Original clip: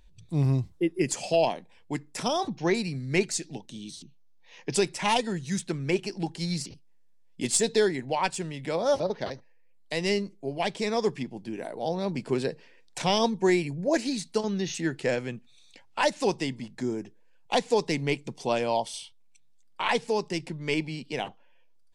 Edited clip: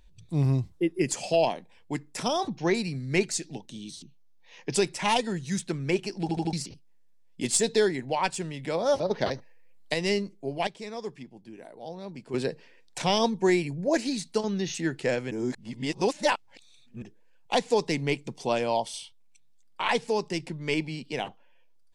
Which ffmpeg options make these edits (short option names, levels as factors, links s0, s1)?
-filter_complex "[0:a]asplit=11[s0][s1][s2][s3][s4][s5][s6][s7][s8][s9][s10];[s0]atrim=end=6.292[s11];[s1]atrim=start=6.208:end=6.292[s12];[s2]atrim=start=6.208:end=6.292[s13];[s3]atrim=start=6.208:end=6.292[s14];[s4]atrim=start=6.528:end=9.112[s15];[s5]atrim=start=9.108:end=9.942,asetpts=PTS-STARTPTS,volume=1.88[s16];[s6]atrim=start=9.938:end=10.672[s17];[s7]atrim=start=10.668:end=12.342,asetpts=PTS-STARTPTS,volume=0.316[s18];[s8]atrim=start=12.338:end=15.312[s19];[s9]atrim=start=15.308:end=17.022,asetpts=PTS-STARTPTS,areverse[s20];[s10]atrim=start=17.018[s21];[s11][s12]acrossfade=d=0.004:c1=hsin:c2=hsin[s22];[s22][s13]acrossfade=d=0.004:c1=hsin:c2=hsin[s23];[s23][s14]acrossfade=d=0.004:c1=hsin:c2=hsin[s24];[s24][s15]acrossfade=d=0.004:c1=hsin:c2=hsin[s25];[s25][s16]acrossfade=d=0.004:c1=hsin:c2=hsin[s26];[s26][s17]acrossfade=d=0.004:c1=hsin:c2=hsin[s27];[s27][s18]acrossfade=d=0.004:c1=hsin:c2=hsin[s28];[s28][s19]acrossfade=d=0.004:c1=hsin:c2=hsin[s29];[s29][s20]acrossfade=d=0.004:c1=hsin:c2=hsin[s30];[s30][s21]acrossfade=d=0.004:c1=hsin:c2=hsin"